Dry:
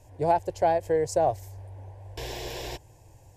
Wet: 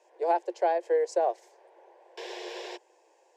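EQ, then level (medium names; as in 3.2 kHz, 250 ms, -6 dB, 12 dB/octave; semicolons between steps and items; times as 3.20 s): rippled Chebyshev high-pass 340 Hz, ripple 3 dB; distance through air 110 m; treble shelf 5.2 kHz +5 dB; 0.0 dB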